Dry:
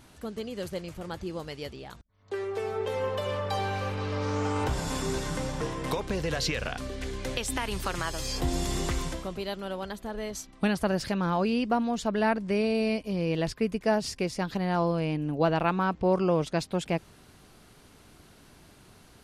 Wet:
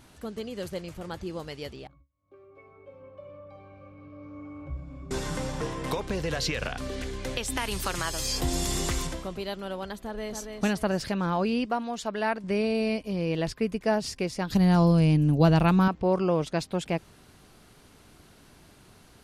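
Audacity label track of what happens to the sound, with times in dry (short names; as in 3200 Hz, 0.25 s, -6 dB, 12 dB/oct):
1.870000	5.110000	octave resonator C#, decay 0.19 s
6.620000	7.020000	three-band squash depth 100%
7.570000	9.070000	high shelf 4000 Hz +7.5 dB
9.990000	10.520000	echo throw 0.28 s, feedback 25%, level -5 dB
11.650000	12.440000	low shelf 300 Hz -10.5 dB
14.500000	15.880000	tone controls bass +13 dB, treble +12 dB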